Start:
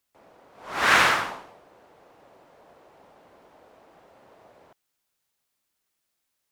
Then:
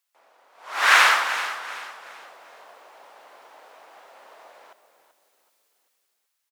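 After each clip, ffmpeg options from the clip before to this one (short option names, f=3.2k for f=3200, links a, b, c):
-filter_complex "[0:a]highpass=800,dynaudnorm=f=120:g=13:m=9.5dB,asplit=5[a][b][c][d][e];[b]adelay=383,afreqshift=-40,volume=-12dB[f];[c]adelay=766,afreqshift=-80,volume=-20.9dB[g];[d]adelay=1149,afreqshift=-120,volume=-29.7dB[h];[e]adelay=1532,afreqshift=-160,volume=-38.6dB[i];[a][f][g][h][i]amix=inputs=5:normalize=0"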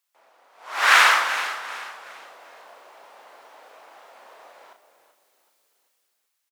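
-filter_complex "[0:a]asplit=2[a][b];[b]adelay=35,volume=-7dB[c];[a][c]amix=inputs=2:normalize=0"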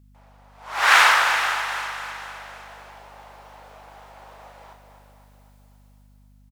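-filter_complex "[0:a]equalizer=f=840:t=o:w=0.34:g=4.5,asplit=2[a][b];[b]aecho=0:1:257|514|771|1028|1285|1542|1799:0.355|0.206|0.119|0.0692|0.0402|0.0233|0.0135[c];[a][c]amix=inputs=2:normalize=0,aeval=exprs='val(0)+0.00251*(sin(2*PI*50*n/s)+sin(2*PI*2*50*n/s)/2+sin(2*PI*3*50*n/s)/3+sin(2*PI*4*50*n/s)/4+sin(2*PI*5*50*n/s)/5)':c=same"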